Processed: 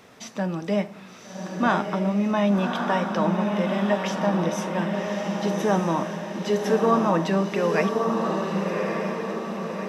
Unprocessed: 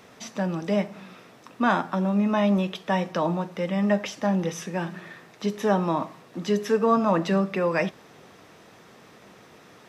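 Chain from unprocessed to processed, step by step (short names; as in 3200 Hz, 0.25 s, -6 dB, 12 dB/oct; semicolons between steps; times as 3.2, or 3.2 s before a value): diffused feedback echo 1.17 s, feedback 54%, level -3 dB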